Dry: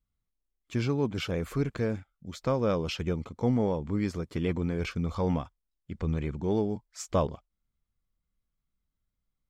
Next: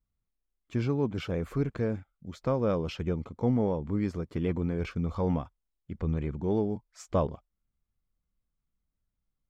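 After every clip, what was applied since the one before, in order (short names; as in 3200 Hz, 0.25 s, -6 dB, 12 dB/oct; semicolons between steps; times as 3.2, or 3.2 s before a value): high shelf 2300 Hz -9.5 dB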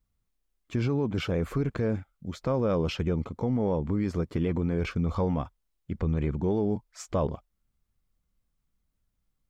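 limiter -24 dBFS, peak gain reduction 9 dB; gain +5.5 dB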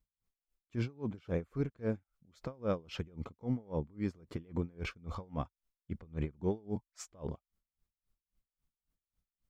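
dB-linear tremolo 3.7 Hz, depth 29 dB; gain -3.5 dB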